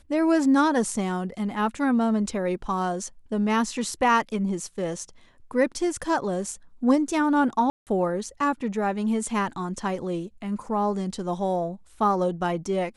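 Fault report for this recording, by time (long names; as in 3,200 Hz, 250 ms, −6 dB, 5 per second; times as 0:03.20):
0:07.70–0:07.87: drop-out 168 ms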